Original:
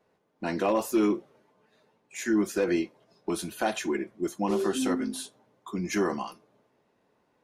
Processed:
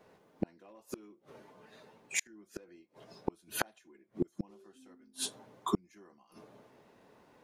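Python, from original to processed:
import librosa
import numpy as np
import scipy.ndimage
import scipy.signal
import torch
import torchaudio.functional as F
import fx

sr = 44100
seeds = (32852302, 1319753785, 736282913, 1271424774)

y = fx.gate_flip(x, sr, shuts_db=-25.0, range_db=-39)
y = F.gain(torch.from_numpy(y), 8.0).numpy()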